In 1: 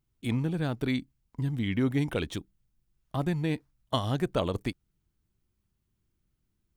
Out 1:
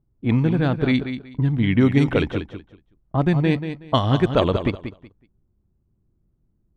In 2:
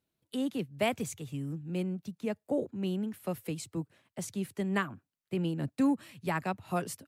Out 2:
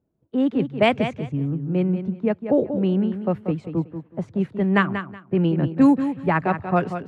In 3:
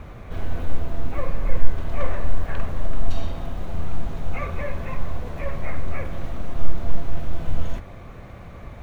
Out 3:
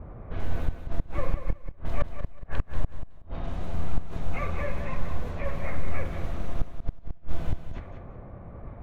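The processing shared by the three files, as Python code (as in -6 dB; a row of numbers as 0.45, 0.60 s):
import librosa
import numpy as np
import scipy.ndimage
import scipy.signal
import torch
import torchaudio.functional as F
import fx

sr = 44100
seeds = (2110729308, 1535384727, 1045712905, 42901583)

y = fx.gate_flip(x, sr, shuts_db=-9.0, range_db=-31)
y = fx.env_lowpass(y, sr, base_hz=650.0, full_db=-19.0)
y = fx.echo_feedback(y, sr, ms=186, feedback_pct=21, wet_db=-9.5)
y = y * 10.0 ** (-22 / 20.0) / np.sqrt(np.mean(np.square(y)))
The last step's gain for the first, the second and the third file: +10.0, +12.0, -2.5 dB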